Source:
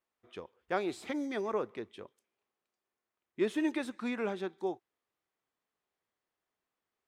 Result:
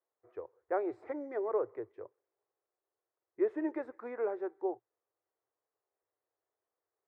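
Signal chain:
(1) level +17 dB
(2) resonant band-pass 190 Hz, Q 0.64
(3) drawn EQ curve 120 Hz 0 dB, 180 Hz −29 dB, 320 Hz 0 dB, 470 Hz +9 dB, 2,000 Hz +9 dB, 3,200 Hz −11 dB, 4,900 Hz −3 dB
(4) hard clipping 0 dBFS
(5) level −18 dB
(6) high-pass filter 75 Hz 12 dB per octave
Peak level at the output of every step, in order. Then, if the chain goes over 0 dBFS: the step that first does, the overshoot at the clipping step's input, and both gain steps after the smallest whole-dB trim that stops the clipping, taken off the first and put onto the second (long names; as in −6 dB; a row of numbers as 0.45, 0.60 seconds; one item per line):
−0.5, −6.5, −2.5, −2.5, −20.5, −20.5 dBFS
no step passes full scale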